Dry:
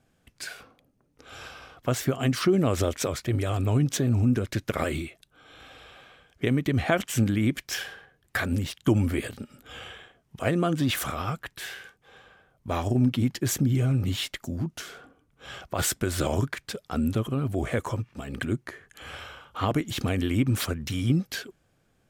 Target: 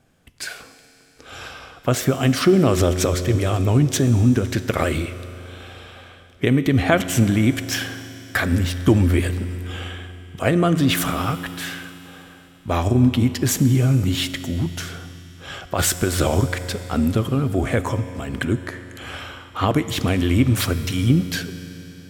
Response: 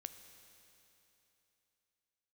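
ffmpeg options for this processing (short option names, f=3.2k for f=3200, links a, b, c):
-filter_complex "[0:a]asplit=2[a][b];[1:a]atrim=start_sample=2205,asetrate=39690,aresample=44100[c];[b][c]afir=irnorm=-1:irlink=0,volume=13dB[d];[a][d]amix=inputs=2:normalize=0,volume=-4.5dB"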